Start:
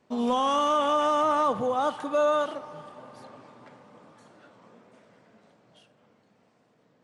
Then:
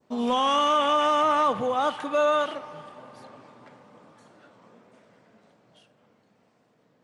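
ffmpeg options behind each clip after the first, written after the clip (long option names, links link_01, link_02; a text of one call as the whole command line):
ffmpeg -i in.wav -af "adynamicequalizer=threshold=0.00631:dfrequency=2400:dqfactor=0.98:tfrequency=2400:tqfactor=0.98:attack=5:release=100:ratio=0.375:range=4:mode=boostabove:tftype=bell" out.wav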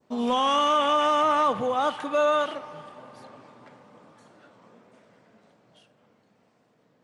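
ffmpeg -i in.wav -af anull out.wav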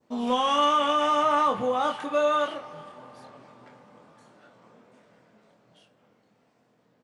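ffmpeg -i in.wav -filter_complex "[0:a]asplit=2[link_01][link_02];[link_02]adelay=24,volume=-5.5dB[link_03];[link_01][link_03]amix=inputs=2:normalize=0,volume=-2dB" out.wav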